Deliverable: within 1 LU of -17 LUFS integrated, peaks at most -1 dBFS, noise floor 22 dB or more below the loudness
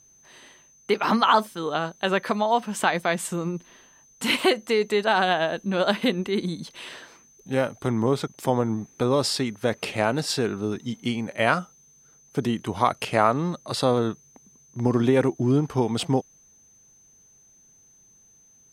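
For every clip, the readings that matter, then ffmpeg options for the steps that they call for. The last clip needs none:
steady tone 6.2 kHz; tone level -54 dBFS; loudness -24.5 LUFS; peak level -4.0 dBFS; loudness target -17.0 LUFS
-> -af "bandreject=f=6200:w=30"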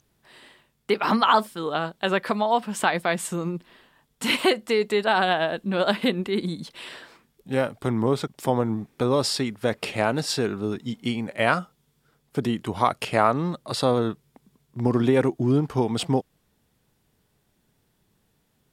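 steady tone not found; loudness -24.5 LUFS; peak level -4.0 dBFS; loudness target -17.0 LUFS
-> -af "volume=2.37,alimiter=limit=0.891:level=0:latency=1"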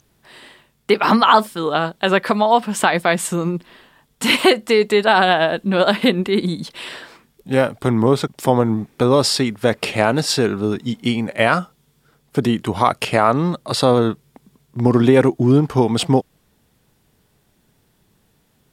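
loudness -17.5 LUFS; peak level -1.0 dBFS; noise floor -62 dBFS

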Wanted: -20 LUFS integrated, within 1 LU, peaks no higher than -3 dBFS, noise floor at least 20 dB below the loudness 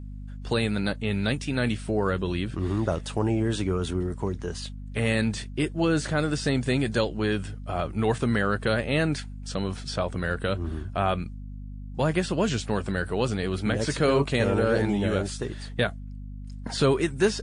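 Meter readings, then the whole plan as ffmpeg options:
hum 50 Hz; highest harmonic 250 Hz; hum level -35 dBFS; loudness -27.0 LUFS; peak level -10.5 dBFS; loudness target -20.0 LUFS
-> -af "bandreject=f=50:t=h:w=4,bandreject=f=100:t=h:w=4,bandreject=f=150:t=h:w=4,bandreject=f=200:t=h:w=4,bandreject=f=250:t=h:w=4"
-af "volume=2.24"

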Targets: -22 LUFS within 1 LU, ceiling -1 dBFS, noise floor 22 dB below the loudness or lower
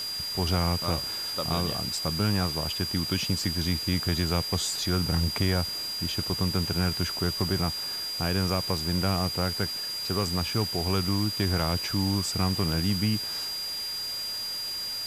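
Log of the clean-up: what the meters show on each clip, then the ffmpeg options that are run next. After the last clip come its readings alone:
steady tone 4.8 kHz; tone level -31 dBFS; noise floor -33 dBFS; noise floor target -49 dBFS; loudness -27.0 LUFS; peak level -14.0 dBFS; loudness target -22.0 LUFS
-> -af "bandreject=f=4800:w=30"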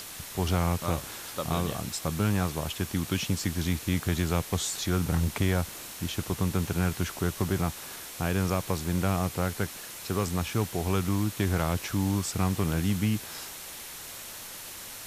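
steady tone not found; noise floor -42 dBFS; noise floor target -52 dBFS
-> -af "afftdn=nr=10:nf=-42"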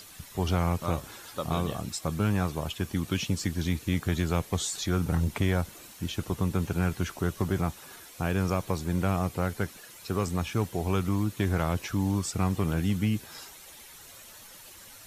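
noise floor -49 dBFS; noise floor target -52 dBFS
-> -af "afftdn=nr=6:nf=-49"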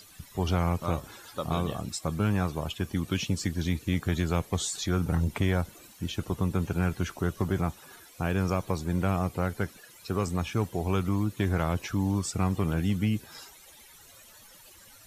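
noise floor -53 dBFS; loudness -30.0 LUFS; peak level -15.5 dBFS; loudness target -22.0 LUFS
-> -af "volume=2.51"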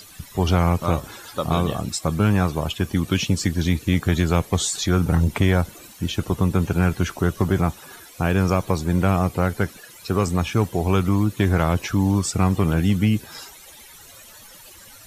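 loudness -22.0 LUFS; peak level -7.5 dBFS; noise floor -45 dBFS

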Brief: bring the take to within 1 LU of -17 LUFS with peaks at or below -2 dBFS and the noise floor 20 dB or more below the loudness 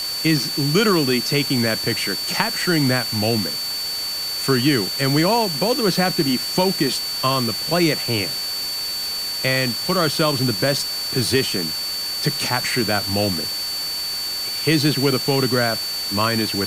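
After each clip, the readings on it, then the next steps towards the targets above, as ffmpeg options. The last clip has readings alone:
steady tone 4.5 kHz; tone level -24 dBFS; noise floor -26 dBFS; noise floor target -40 dBFS; loudness -19.5 LUFS; peak level -4.0 dBFS; loudness target -17.0 LUFS
-> -af "bandreject=f=4500:w=30"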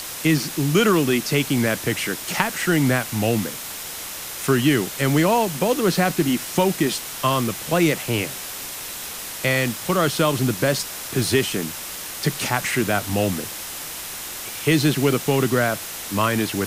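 steady tone not found; noise floor -33 dBFS; noise floor target -42 dBFS
-> -af "afftdn=nr=9:nf=-33"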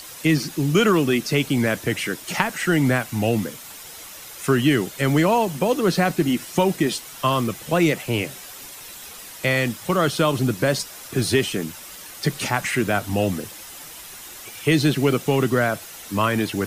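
noise floor -40 dBFS; noise floor target -42 dBFS
-> -af "afftdn=nr=6:nf=-40"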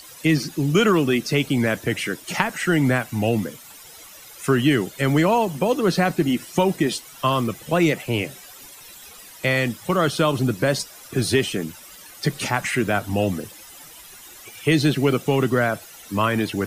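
noise floor -44 dBFS; loudness -21.5 LUFS; peak level -4.0 dBFS; loudness target -17.0 LUFS
-> -af "volume=1.68,alimiter=limit=0.794:level=0:latency=1"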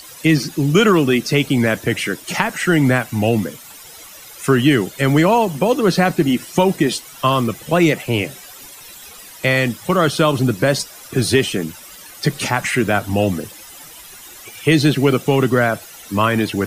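loudness -17.5 LUFS; peak level -2.0 dBFS; noise floor -39 dBFS

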